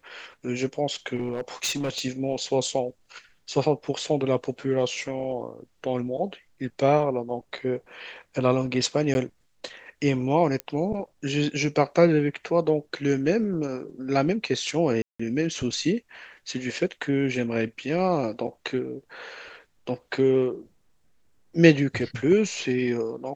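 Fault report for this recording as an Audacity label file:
1.150000	2.020000	clipped -23.5 dBFS
9.140000	9.150000	dropout 11 ms
10.600000	10.600000	pop -14 dBFS
15.020000	15.200000	dropout 175 ms

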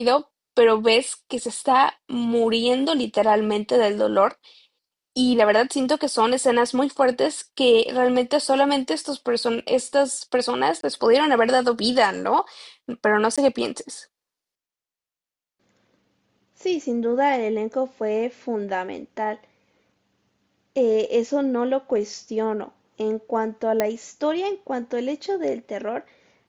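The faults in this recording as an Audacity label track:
10.810000	10.830000	dropout 23 ms
13.360000	13.380000	dropout 16 ms
23.800000	23.800000	pop -7 dBFS

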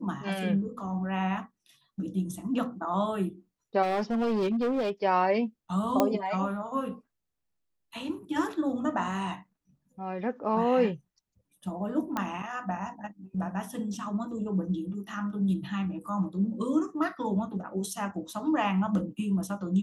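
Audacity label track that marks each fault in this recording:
3.820000	4.910000	clipped -24 dBFS
6.000000	6.000000	pop -10 dBFS
12.170000	12.170000	pop -16 dBFS

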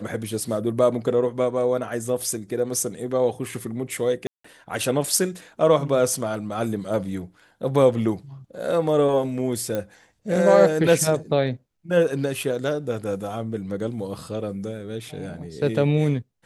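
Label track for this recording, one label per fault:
4.270000	4.440000	dropout 174 ms
9.750000	9.750000	pop -14 dBFS

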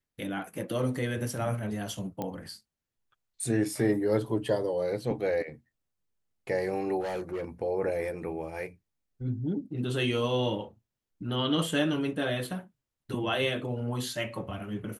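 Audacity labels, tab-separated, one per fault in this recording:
2.220000	2.220000	pop -20 dBFS
7.000000	7.440000	clipped -29.5 dBFS

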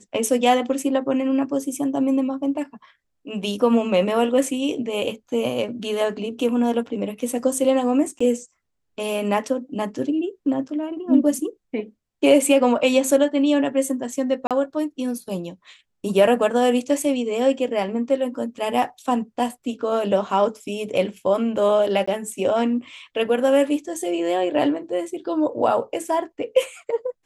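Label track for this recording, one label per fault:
8.190000	8.210000	dropout 15 ms
14.470000	14.510000	dropout 37 ms
22.060000	22.070000	dropout 15 ms

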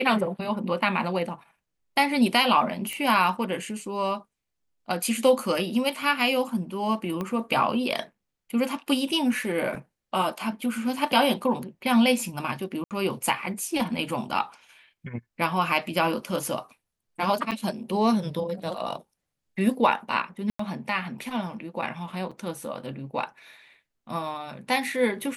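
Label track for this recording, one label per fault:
2.930000	2.930000	pop -18 dBFS
7.210000	7.210000	pop -18 dBFS
12.840000	12.910000	dropout 68 ms
17.510000	17.520000	dropout 6.6 ms
20.500000	20.590000	dropout 94 ms
22.310000	22.310000	dropout 4.9 ms

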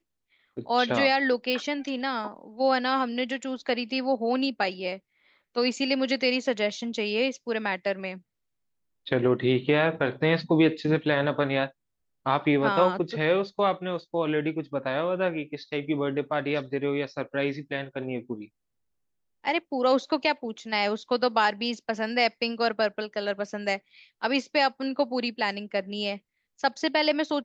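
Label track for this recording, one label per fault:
1.500000	1.500000	pop -16 dBFS

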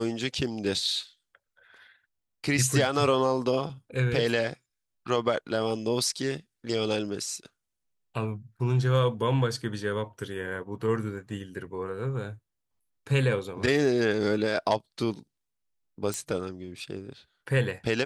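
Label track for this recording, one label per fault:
16.140000	16.140000	pop -16 dBFS

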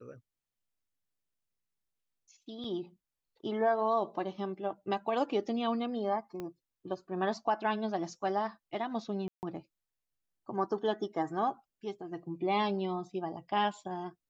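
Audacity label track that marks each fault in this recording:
2.640000	2.640000	dropout 4 ms
6.400000	6.400000	pop -26 dBFS
9.280000	9.430000	dropout 149 ms

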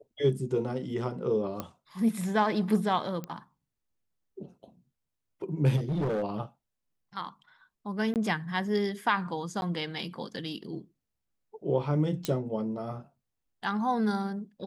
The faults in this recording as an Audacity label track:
1.600000	1.600000	pop -19 dBFS
3.240000	3.240000	pop -23 dBFS
5.760000	6.240000	clipped -26 dBFS
8.140000	8.160000	dropout 18 ms
9.610000	9.620000	dropout
12.250000	12.250000	pop -14 dBFS

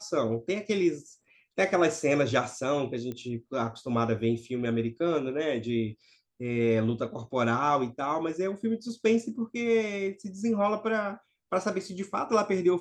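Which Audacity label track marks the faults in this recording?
3.120000	3.120000	pop -24 dBFS

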